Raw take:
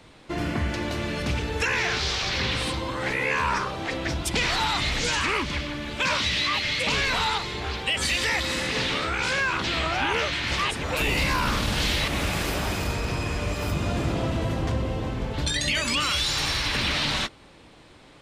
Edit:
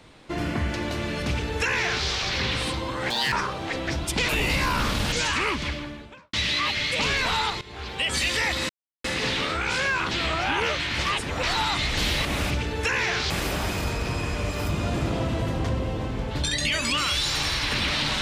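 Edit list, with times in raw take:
1.27–2.07 copy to 12.33
3.1–3.5 speed 180%
4.46–5 swap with 10.96–11.8
5.52–6.21 studio fade out
7.49–7.95 fade in, from -16 dB
8.57 insert silence 0.35 s

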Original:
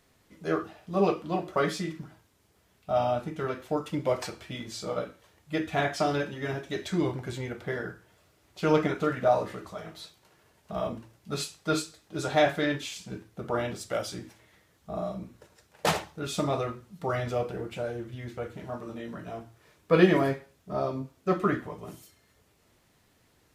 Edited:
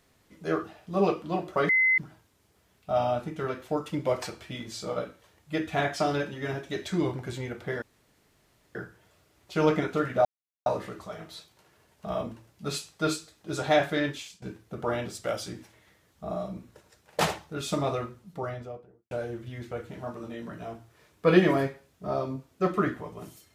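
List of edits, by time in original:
1.69–1.98 bleep 2050 Hz -19 dBFS
7.82 insert room tone 0.93 s
9.32 insert silence 0.41 s
12.75–13.08 fade out, to -16 dB
16.67–17.77 studio fade out

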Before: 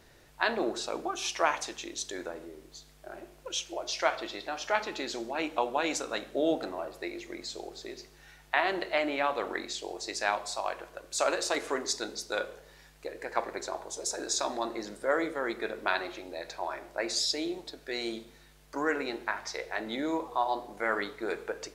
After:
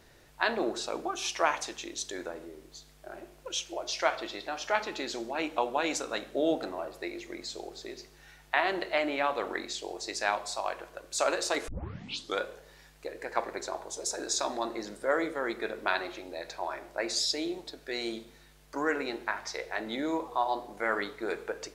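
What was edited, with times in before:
11.68 tape start 0.72 s

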